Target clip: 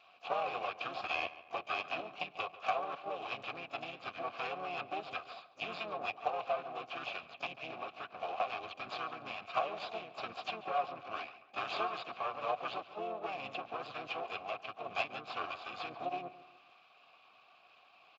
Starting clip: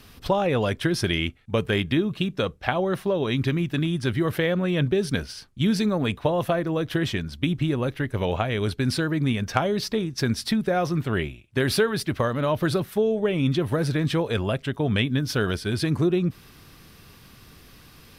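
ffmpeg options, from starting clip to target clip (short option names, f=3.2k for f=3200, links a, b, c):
-filter_complex "[0:a]tiltshelf=f=880:g=-8.5,aresample=11025,aeval=exprs='max(val(0),0)':c=same,aresample=44100,asplit=4[a][b][c][d];[b]asetrate=35002,aresample=44100,atempo=1.25992,volume=-1dB[e];[c]asetrate=66075,aresample=44100,atempo=0.66742,volume=-11dB[f];[d]asetrate=88200,aresample=44100,atempo=0.5,volume=-12dB[g];[a][e][f][g]amix=inputs=4:normalize=0,asplit=3[h][i][j];[h]bandpass=f=730:t=q:w=8,volume=0dB[k];[i]bandpass=f=1.09k:t=q:w=8,volume=-6dB[l];[j]bandpass=f=2.44k:t=q:w=8,volume=-9dB[m];[k][l][m]amix=inputs=3:normalize=0,asoftclip=type=hard:threshold=-23.5dB,asplit=2[n][o];[o]adelay=141,lowpass=f=3.4k:p=1,volume=-15dB,asplit=2[p][q];[q]adelay=141,lowpass=f=3.4k:p=1,volume=0.44,asplit=2[r][s];[s]adelay=141,lowpass=f=3.4k:p=1,volume=0.44,asplit=2[t][u];[u]adelay=141,lowpass=f=3.4k:p=1,volume=0.44[v];[p][r][t][v]amix=inputs=4:normalize=0[w];[n][w]amix=inputs=2:normalize=0,volume=2dB" -ar 16000 -c:a libspeex -b:a 34k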